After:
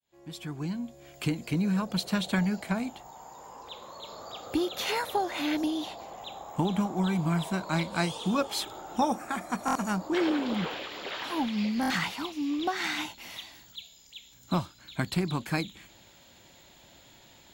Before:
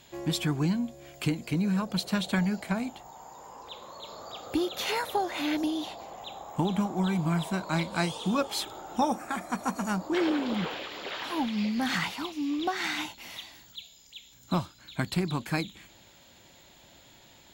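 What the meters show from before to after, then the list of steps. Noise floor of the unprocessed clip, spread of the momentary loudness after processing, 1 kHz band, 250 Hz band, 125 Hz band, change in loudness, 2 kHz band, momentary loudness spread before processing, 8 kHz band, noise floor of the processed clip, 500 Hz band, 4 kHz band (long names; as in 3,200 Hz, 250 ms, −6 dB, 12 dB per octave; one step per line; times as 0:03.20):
−56 dBFS, 16 LU, +0.5 dB, −0.5 dB, −1.0 dB, −0.5 dB, 0.0 dB, 16 LU, −0.5 dB, −56 dBFS, 0.0 dB, −0.5 dB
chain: fade in at the beginning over 1.43 s
buffer that repeats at 0:09.66/0:11.81, samples 1,024, times 3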